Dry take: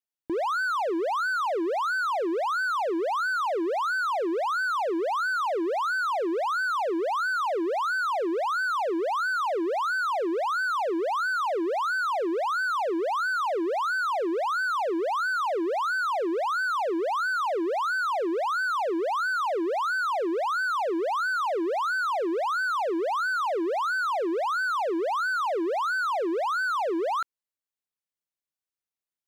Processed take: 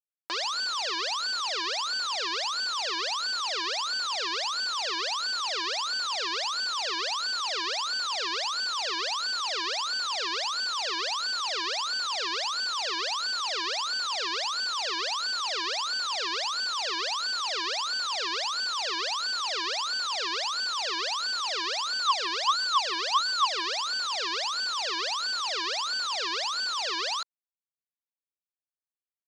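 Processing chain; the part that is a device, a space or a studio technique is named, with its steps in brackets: high-pass 43 Hz 24 dB/octave; 21.95–23.63 s: dynamic bell 1.1 kHz, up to +5 dB, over -40 dBFS, Q 7.6; hand-held game console (bit crusher 4-bit; cabinet simulation 440–5600 Hz, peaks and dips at 1.1 kHz +4 dB, 2.1 kHz -6 dB, 4.6 kHz +6 dB); trim -2.5 dB

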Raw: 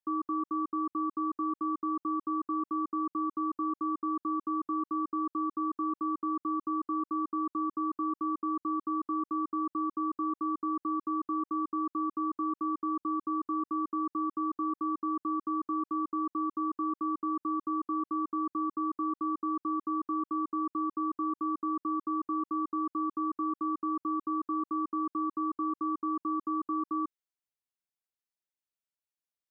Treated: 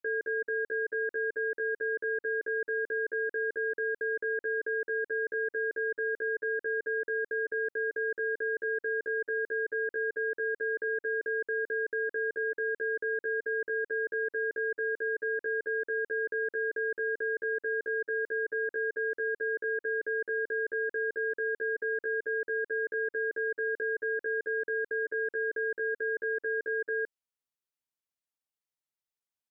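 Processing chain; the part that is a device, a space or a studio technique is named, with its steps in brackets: chipmunk voice (pitch shift +6 st)

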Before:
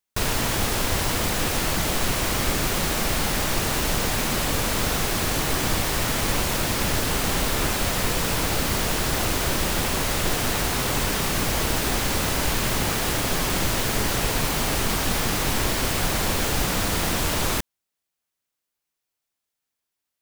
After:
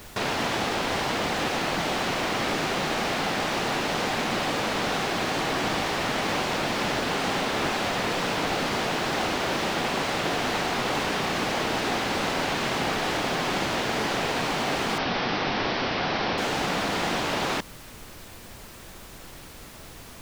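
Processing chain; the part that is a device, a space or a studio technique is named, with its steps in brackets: horn gramophone (band-pass 190–4200 Hz; peaking EQ 760 Hz +4 dB 0.33 oct; wow and flutter; pink noise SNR 16 dB); 14.98–16.38 s: steep low-pass 5.7 kHz 72 dB/octave

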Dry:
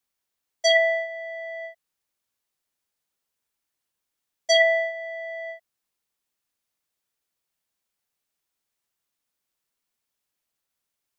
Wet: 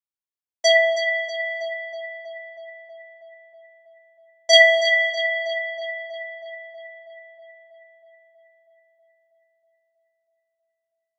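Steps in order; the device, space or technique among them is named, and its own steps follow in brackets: gate with hold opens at -31 dBFS; 4.53–5.10 s: treble shelf 2.4 kHz +11 dB; dub delay into a spring reverb (filtered feedback delay 321 ms, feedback 72%, low-pass 3.9 kHz, level -7.5 dB; spring tank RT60 2.1 s, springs 39 ms, chirp 45 ms, DRR 10.5 dB); trim +2.5 dB

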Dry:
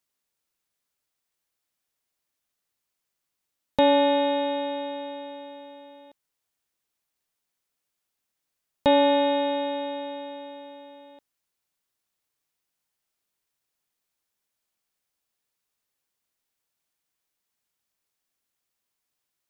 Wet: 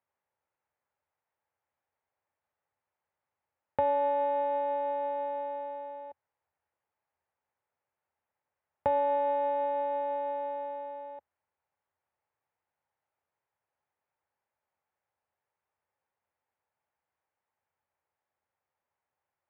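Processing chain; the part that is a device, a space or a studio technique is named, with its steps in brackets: bass amplifier (compression 3:1, threshold -35 dBFS, peak gain reduction 14.5 dB; cabinet simulation 80–2100 Hz, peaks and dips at 84 Hz +9 dB, 190 Hz -7 dB, 290 Hz -8 dB, 560 Hz +5 dB, 850 Hz +9 dB)

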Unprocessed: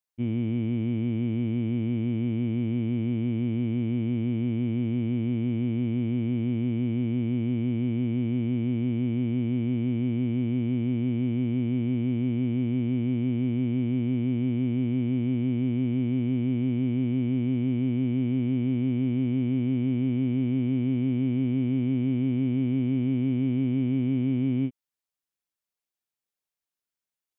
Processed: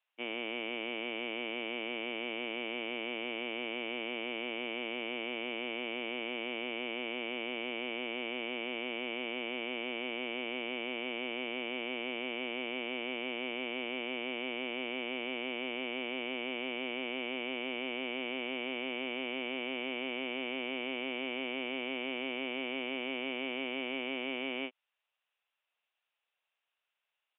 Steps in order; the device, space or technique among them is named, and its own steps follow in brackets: musical greeting card (resampled via 8 kHz; high-pass 550 Hz 24 dB/octave; peaking EQ 2.7 kHz +7.5 dB 0.25 oct); trim +9 dB

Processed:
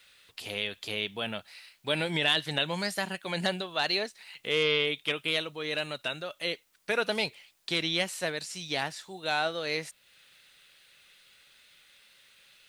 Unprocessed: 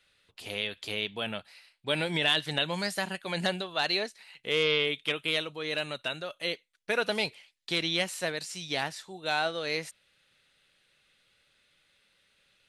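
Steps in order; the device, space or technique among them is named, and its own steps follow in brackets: noise-reduction cassette on a plain deck (tape noise reduction on one side only encoder only; wow and flutter 22 cents; white noise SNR 38 dB)

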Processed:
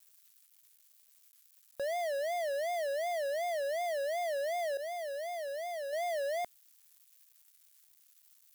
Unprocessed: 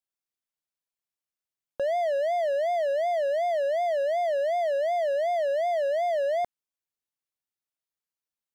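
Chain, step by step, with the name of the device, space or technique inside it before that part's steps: 4.77–5.93 s: expander -21 dBFS; budget class-D amplifier (dead-time distortion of 0.18 ms; zero-crossing glitches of -36 dBFS); trim -8 dB

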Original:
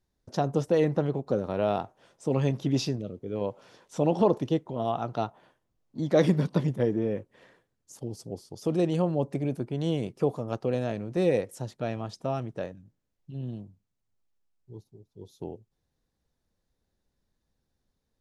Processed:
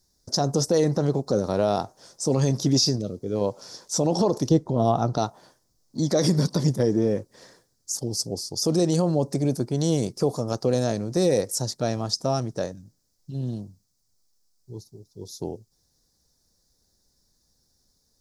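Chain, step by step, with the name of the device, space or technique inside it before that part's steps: over-bright horn tweeter (resonant high shelf 3.8 kHz +10.5 dB, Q 3; peak limiter -17.5 dBFS, peak gain reduction 10 dB); 4.49–5.18 s: tilt EQ -2 dB/octave; trim +6 dB

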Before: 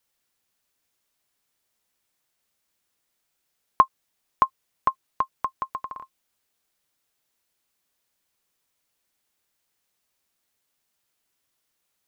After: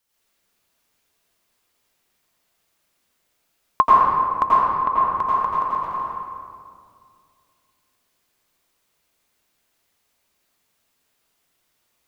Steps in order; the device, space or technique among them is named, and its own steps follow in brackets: 4.43–4.90 s: distance through air 210 m; stairwell (reverberation RT60 2.2 s, pre-delay 81 ms, DRR -8 dB)

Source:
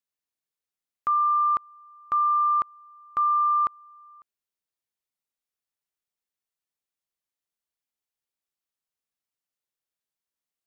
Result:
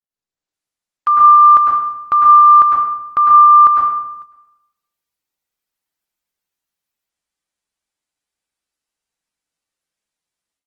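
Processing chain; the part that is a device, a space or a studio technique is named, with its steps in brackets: speakerphone in a meeting room (reverberation RT60 0.85 s, pre-delay 99 ms, DRR -2 dB; level rider gain up to 15 dB; gate -34 dBFS, range -10 dB; Opus 20 kbps 48 kHz)

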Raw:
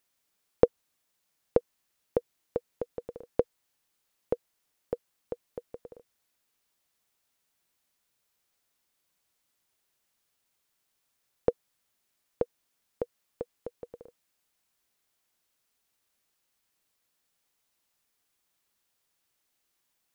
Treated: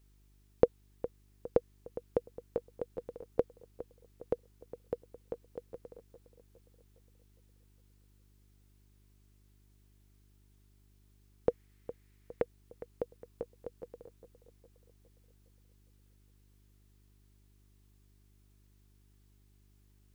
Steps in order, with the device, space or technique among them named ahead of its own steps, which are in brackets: 11.50–12.42 s: peaking EQ 2 kHz +13.5 dB 0.96 oct; video cassette with head-switching buzz (mains buzz 50 Hz, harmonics 8, -61 dBFS -8 dB/octave; white noise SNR 36 dB); filtered feedback delay 410 ms, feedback 51%, level -14 dB; trim -3.5 dB

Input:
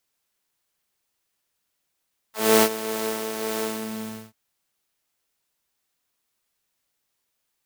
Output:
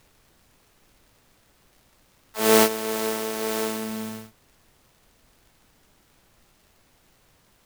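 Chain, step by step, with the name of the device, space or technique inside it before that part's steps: vinyl LP (crackle; pink noise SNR 31 dB); trim +1 dB

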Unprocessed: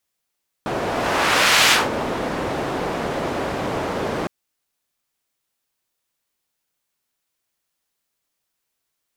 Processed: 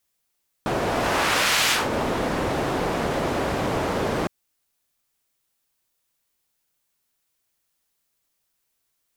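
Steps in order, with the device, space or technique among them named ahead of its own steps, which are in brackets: ASMR close-microphone chain (bass shelf 110 Hz +5.5 dB; compression 4:1, threshold -19 dBFS, peak gain reduction 7 dB; treble shelf 7 kHz +4.5 dB)

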